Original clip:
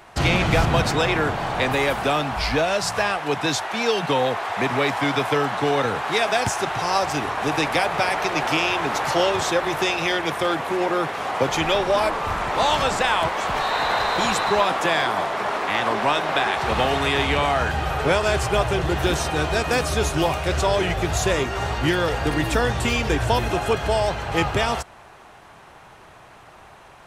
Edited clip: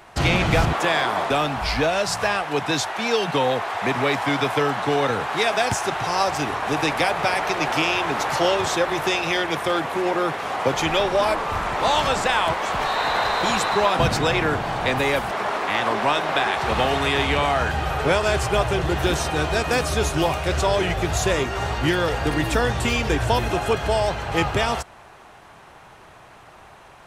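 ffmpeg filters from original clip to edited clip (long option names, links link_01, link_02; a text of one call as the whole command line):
ffmpeg -i in.wav -filter_complex "[0:a]asplit=5[link_01][link_02][link_03][link_04][link_05];[link_01]atrim=end=0.732[link_06];[link_02]atrim=start=14.738:end=15.312[link_07];[link_03]atrim=start=2.048:end=14.742[link_08];[link_04]atrim=start=0.728:end=2.052[link_09];[link_05]atrim=start=15.308[link_10];[link_06][link_07]acrossfade=duration=0.004:curve1=hsin:curve2=hsin[link_11];[link_11][link_08]acrossfade=duration=0.004:curve1=hsin:curve2=hsin[link_12];[link_12][link_09]acrossfade=duration=0.004:curve1=hsin:curve2=hsin[link_13];[link_13][link_10]acrossfade=duration=0.004:curve1=hsin:curve2=hsin" out.wav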